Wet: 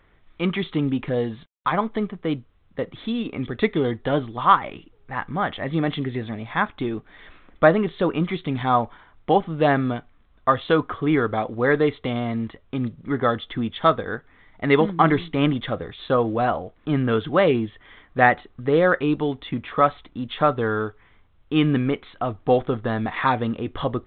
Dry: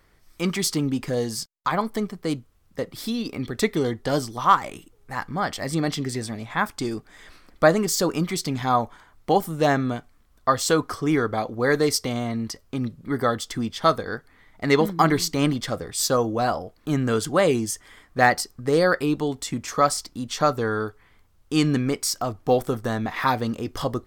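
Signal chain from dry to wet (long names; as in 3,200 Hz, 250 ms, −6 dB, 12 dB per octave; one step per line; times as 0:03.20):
level +1.5 dB
mu-law 64 kbit/s 8,000 Hz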